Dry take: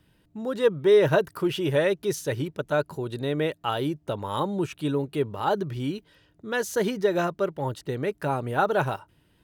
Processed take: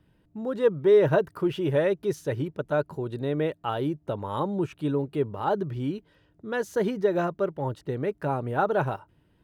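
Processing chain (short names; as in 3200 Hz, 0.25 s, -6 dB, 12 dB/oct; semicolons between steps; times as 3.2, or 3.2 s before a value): high shelf 2300 Hz -11.5 dB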